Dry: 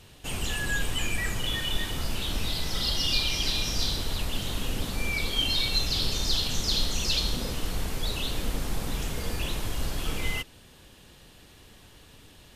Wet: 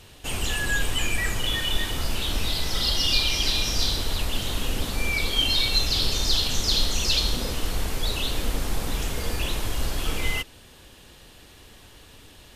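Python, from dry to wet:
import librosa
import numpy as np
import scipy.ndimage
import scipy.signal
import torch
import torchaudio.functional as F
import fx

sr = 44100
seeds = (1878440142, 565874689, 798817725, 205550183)

y = fx.peak_eq(x, sr, hz=160.0, db=-4.5, octaves=1.1)
y = y * 10.0 ** (4.0 / 20.0)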